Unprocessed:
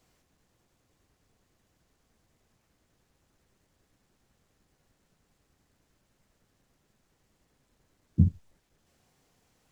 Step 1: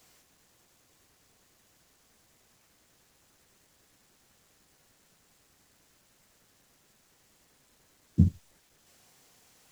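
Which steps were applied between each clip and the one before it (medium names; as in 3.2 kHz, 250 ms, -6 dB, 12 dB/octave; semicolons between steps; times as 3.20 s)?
tilt EQ +2 dB/octave; trim +6 dB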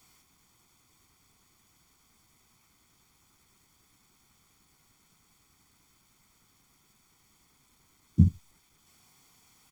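comb 0.9 ms, depth 64%; trim -2 dB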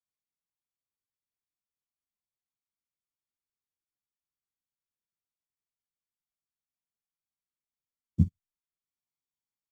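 upward expansion 2.5:1, over -39 dBFS; trim -1.5 dB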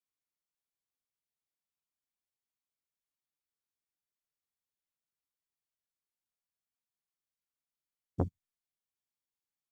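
transformer saturation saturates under 440 Hz; trim -3 dB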